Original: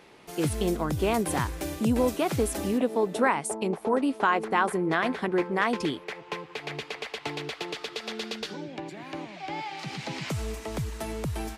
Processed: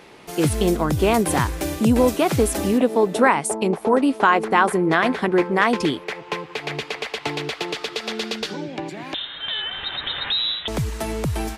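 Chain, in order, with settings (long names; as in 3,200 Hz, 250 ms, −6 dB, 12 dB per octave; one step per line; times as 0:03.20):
0:09.14–0:10.68: voice inversion scrambler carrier 3,900 Hz
level +7.5 dB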